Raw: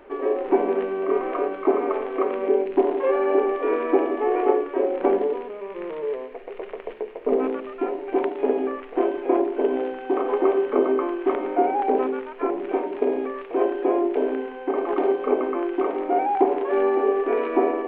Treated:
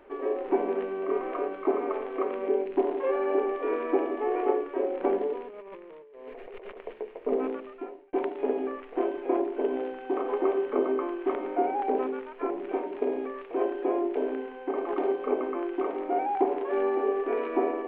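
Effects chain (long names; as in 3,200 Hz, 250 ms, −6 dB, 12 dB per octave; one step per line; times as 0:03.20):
0:05.48–0:06.78: compressor whose output falls as the input rises −39 dBFS, ratio −1
0:07.52–0:08.13: fade out
level −6 dB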